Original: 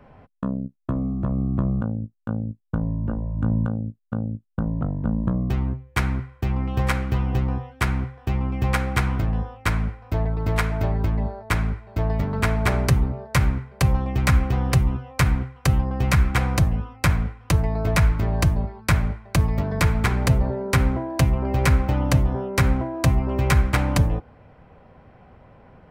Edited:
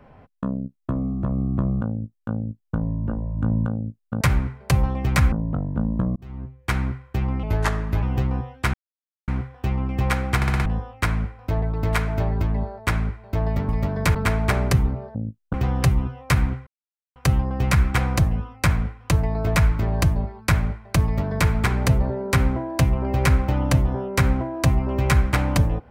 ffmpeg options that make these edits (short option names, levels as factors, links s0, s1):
-filter_complex "[0:a]asplit=17[s0][s1][s2][s3][s4][s5][s6][s7][s8][s9][s10][s11][s12][s13][s14][s15][s16];[s0]atrim=end=4.212[s17];[s1]atrim=start=13.318:end=14.432[s18];[s2]atrim=start=4.598:end=5.44,asetpts=PTS-STARTPTS,afade=t=out:st=0.838:d=0.004:c=hsin[s19];[s3]atrim=start=5.44:end=6.714,asetpts=PTS-STARTPTS,afade=t=in:d=0.63[s20];[s4]atrim=start=6.71:end=7.2,asetpts=PTS-STARTPTS,asetrate=36162,aresample=44100,atrim=end_sample=26352,asetpts=PTS-STARTPTS[s21];[s5]atrim=start=7.196:end=7.91,asetpts=PTS-STARTPTS,afade=t=out:st=0.71:d=0.004:c=hsin,apad=pad_dur=0.54[s22];[s6]atrim=start=7.91:end=9.052,asetpts=PTS-STARTPTS,afade=t=in:d=0.004:c=hsin[s23];[s7]atrim=start=8.988:end=9.052[s24];[s8]atrim=start=8.988:end=9.052[s25];[s9]atrim=start=8.988:end=9.052[s26];[s10]atrim=start=8.988:end=9.052[s27];[s11]atrim=start=9.288:end=12.322[s28];[s12]atrim=start=19.438:end=19.902[s29];[s13]atrim=start=12.318:end=13.322[s30];[s14]atrim=start=4.208:end=4.602[s31];[s15]atrim=start=14.428:end=15.56,asetpts=PTS-STARTPTS,afade=t=out:st=1.128:d=0.004:c=hsin,apad=pad_dur=0.49[s32];[s16]atrim=start=15.56,asetpts=PTS-STARTPTS,afade=t=in:d=0.004:c=hsin[s33];[s17][s18]acrossfade=d=0.004:c1=hsin:c2=hsin[s34];[s19][s20]concat=n=2:v=0:a=1[s35];[s34][s35]acrossfade=d=0.004:c1=hsin:c2=hsin[s36];[s36][s21]acrossfade=d=0.004:c1=hsin:c2=hsin[s37];[s22][s23]concat=n=2:v=0:a=1[s38];[s37][s38]acrossfade=d=0.004:c1=hsin:c2=hsin[s39];[s39][s24]acrossfade=d=0.004:c1=hsin:c2=hsin[s40];[s40][s25]acrossfade=d=0.004:c1=hsin:c2=hsin[s41];[s41][s26]acrossfade=d=0.004:c1=hsin:c2=hsin[s42];[s42][s27]acrossfade=d=0.004:c1=hsin:c2=hsin[s43];[s43][s28]acrossfade=d=0.004:c1=hsin:c2=hsin[s44];[s44][s29]acrossfade=d=0.004:c1=hsin:c2=hsin[s45];[s45][s30]acrossfade=d=0.004:c1=hsin:c2=hsin[s46];[s46][s31]acrossfade=d=0.004:c1=hsin:c2=hsin[s47];[s32][s33]concat=n=2:v=0:a=1[s48];[s47][s48]acrossfade=d=0.004:c1=hsin:c2=hsin"